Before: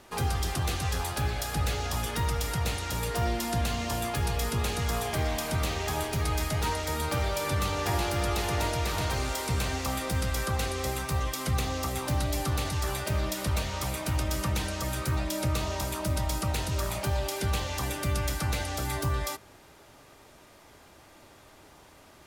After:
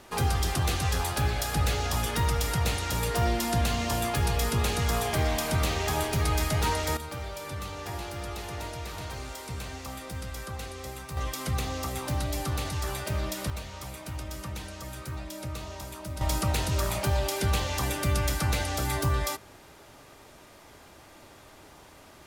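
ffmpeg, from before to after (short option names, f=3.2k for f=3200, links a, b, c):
-af "asetnsamples=n=441:p=0,asendcmd='6.97 volume volume -8dB;11.17 volume volume -1.5dB;13.5 volume volume -8dB;16.21 volume volume 2.5dB',volume=2.5dB"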